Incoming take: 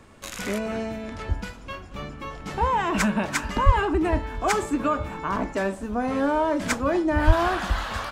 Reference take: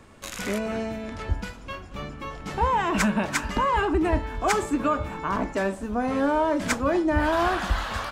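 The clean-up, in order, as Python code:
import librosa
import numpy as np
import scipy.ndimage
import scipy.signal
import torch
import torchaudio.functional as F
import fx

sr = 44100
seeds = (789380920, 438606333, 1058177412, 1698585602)

y = fx.fix_deplosive(x, sr, at_s=(3.65, 7.26))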